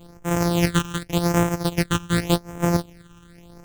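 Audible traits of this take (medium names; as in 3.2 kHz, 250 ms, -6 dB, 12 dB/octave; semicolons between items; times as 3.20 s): a buzz of ramps at a fixed pitch in blocks of 256 samples; phasing stages 8, 0.87 Hz, lowest notch 610–4300 Hz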